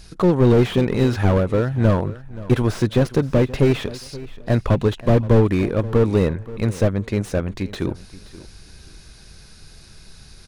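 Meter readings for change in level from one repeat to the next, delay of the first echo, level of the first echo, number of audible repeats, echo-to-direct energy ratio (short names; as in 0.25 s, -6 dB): -13.0 dB, 0.527 s, -18.0 dB, 2, -18.0 dB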